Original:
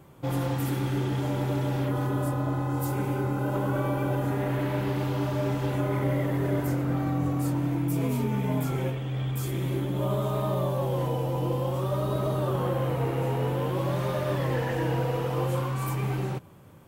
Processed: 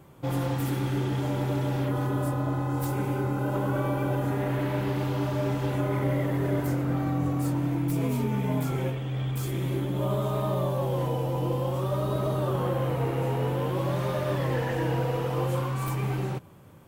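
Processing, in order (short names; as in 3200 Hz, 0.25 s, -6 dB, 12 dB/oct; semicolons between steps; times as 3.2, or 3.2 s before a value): tracing distortion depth 0.029 ms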